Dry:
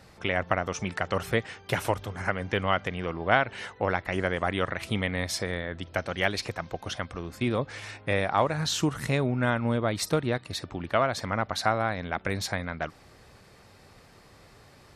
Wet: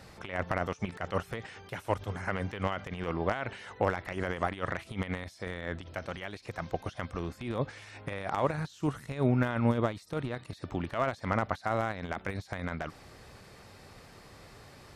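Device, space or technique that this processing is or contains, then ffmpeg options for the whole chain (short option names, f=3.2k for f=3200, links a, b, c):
de-esser from a sidechain: -filter_complex "[0:a]asplit=2[a][b];[b]highpass=f=4.1k:w=0.5412,highpass=f=4.1k:w=1.3066,apad=whole_len=659688[c];[a][c]sidechaincompress=threshold=-56dB:ratio=8:attack=0.6:release=38,volume=2dB"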